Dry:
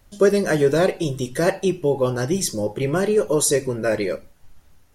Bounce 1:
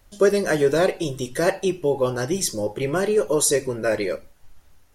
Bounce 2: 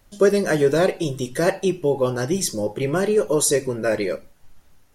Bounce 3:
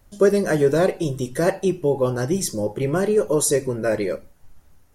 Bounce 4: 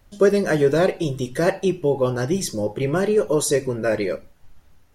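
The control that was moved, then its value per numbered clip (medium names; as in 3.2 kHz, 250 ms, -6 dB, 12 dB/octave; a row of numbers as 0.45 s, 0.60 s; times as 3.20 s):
peaking EQ, frequency: 160 Hz, 64 Hz, 3.3 kHz, 10 kHz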